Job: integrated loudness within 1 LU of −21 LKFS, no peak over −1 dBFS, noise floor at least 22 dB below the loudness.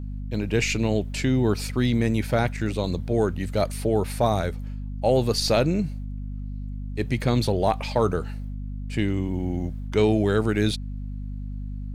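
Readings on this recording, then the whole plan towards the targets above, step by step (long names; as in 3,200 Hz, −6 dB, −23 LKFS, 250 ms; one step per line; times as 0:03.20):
mains hum 50 Hz; hum harmonics up to 250 Hz; level of the hum −29 dBFS; integrated loudness −24.5 LKFS; sample peak −9.0 dBFS; target loudness −21.0 LKFS
→ hum removal 50 Hz, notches 5
level +3.5 dB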